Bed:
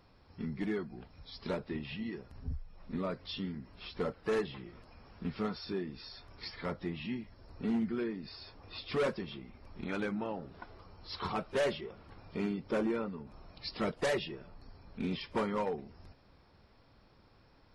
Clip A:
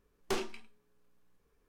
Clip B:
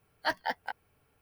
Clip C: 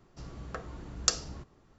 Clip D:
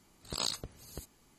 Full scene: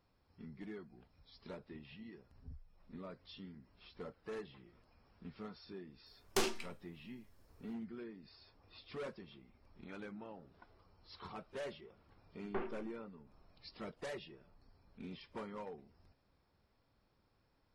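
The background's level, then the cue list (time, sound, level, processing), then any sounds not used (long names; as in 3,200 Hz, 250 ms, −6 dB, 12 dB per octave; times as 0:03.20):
bed −13 dB
0:06.06: mix in A −0.5 dB + high-shelf EQ 4,100 Hz +7 dB
0:12.24: mix in A −5.5 dB + low-pass filter 2,000 Hz 24 dB per octave
not used: B, C, D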